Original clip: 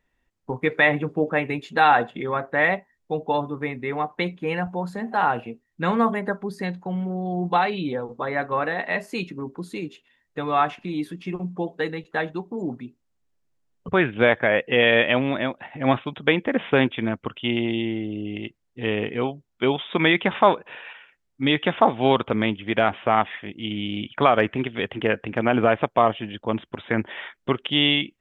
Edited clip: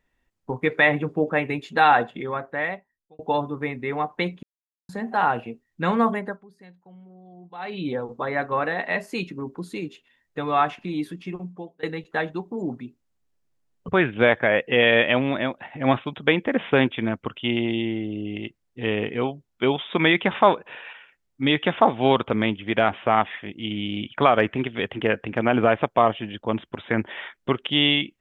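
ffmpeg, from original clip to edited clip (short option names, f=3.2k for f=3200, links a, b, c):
-filter_complex "[0:a]asplit=7[a][b][c][d][e][f][g];[a]atrim=end=3.19,asetpts=PTS-STARTPTS,afade=t=out:st=1.98:d=1.21[h];[b]atrim=start=3.19:end=4.43,asetpts=PTS-STARTPTS,afade=t=in:d=0.004:c=hsin,afade=t=out:st=1.236:d=0.004:c=hsin[i];[c]atrim=start=4.43:end=4.89,asetpts=PTS-STARTPTS,volume=0[j];[d]atrim=start=4.89:end=6.45,asetpts=PTS-STARTPTS,afade=t=in:d=0.004:c=hsin,afade=t=out:st=1.24:d=0.32:silence=0.0944061[k];[e]atrim=start=6.45:end=7.57,asetpts=PTS-STARTPTS,volume=-20.5dB[l];[f]atrim=start=7.57:end=11.83,asetpts=PTS-STARTPTS,afade=t=in:d=0.32:silence=0.0944061,afade=t=out:st=3.52:d=0.74:silence=0.0707946[m];[g]atrim=start=11.83,asetpts=PTS-STARTPTS,afade=t=in:d=0.004:c=hsin:silence=0.0707946[n];[h][i][j][k][l][m][n]concat=n=7:v=0:a=1"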